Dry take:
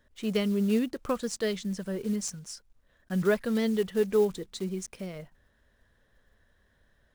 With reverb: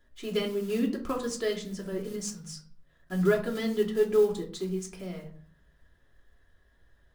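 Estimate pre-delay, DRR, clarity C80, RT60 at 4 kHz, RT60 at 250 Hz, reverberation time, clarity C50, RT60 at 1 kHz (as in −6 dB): 3 ms, −0.5 dB, 15.0 dB, 0.30 s, 0.70 s, 0.55 s, 10.0 dB, 0.50 s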